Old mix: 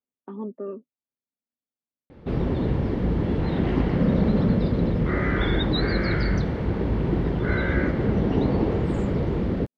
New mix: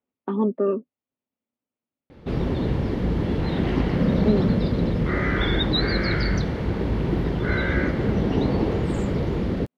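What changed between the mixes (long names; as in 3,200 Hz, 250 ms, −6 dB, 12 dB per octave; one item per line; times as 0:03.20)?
speech +11.0 dB
master: add high-shelf EQ 3,200 Hz +9 dB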